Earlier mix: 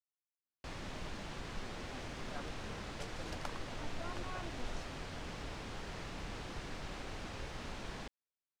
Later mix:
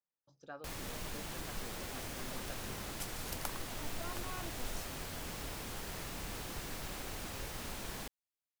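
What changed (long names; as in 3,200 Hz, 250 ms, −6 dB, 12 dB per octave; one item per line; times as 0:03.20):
speech: entry −1.85 s
master: remove high-frequency loss of the air 110 metres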